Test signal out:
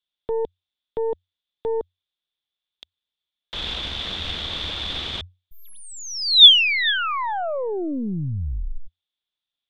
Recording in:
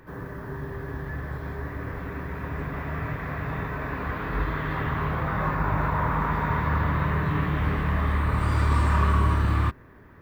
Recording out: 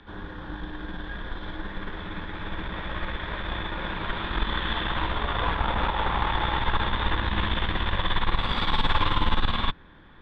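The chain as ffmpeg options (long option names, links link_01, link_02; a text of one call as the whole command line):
ffmpeg -i in.wav -af "afreqshift=-91,aeval=exprs='0.282*(cos(1*acos(clip(val(0)/0.282,-1,1)))-cos(1*PI/2))+0.0447*(cos(4*acos(clip(val(0)/0.282,-1,1)))-cos(4*PI/2))':channel_layout=same,lowpass=frequency=3500:width_type=q:width=12,volume=-1dB" out.wav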